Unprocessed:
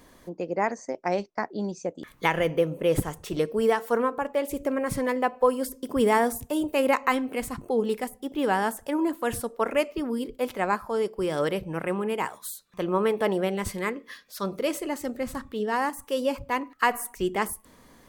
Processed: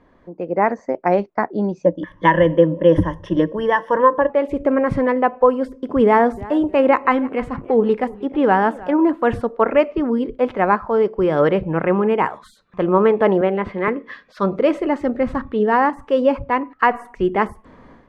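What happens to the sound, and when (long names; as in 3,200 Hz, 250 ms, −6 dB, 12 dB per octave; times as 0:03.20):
0:01.84–0:04.30: EQ curve with evenly spaced ripples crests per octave 1.2, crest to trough 16 dB
0:06.06–0:08.94: feedback echo with a swinging delay time 315 ms, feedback 35%, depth 114 cents, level −20.5 dB
0:13.41–0:13.88: three-way crossover with the lows and the highs turned down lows −13 dB, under 190 Hz, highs −20 dB, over 4,000 Hz
whole clip: low-pass filter 1,800 Hz 12 dB per octave; automatic gain control gain up to 11.5 dB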